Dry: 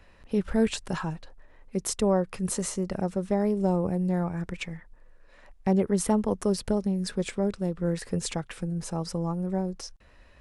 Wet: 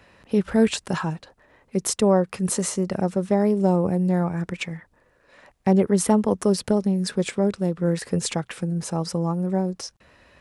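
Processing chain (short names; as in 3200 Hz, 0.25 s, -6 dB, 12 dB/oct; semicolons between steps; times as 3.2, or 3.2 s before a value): HPF 95 Hz 12 dB/oct; gain +5.5 dB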